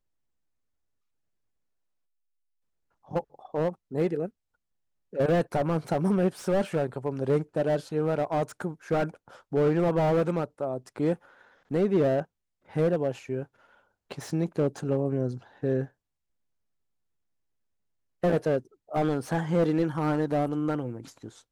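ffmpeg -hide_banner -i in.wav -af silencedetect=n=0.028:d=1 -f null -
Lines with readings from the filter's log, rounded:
silence_start: 0.00
silence_end: 3.12 | silence_duration: 3.12
silence_start: 15.84
silence_end: 18.24 | silence_duration: 2.39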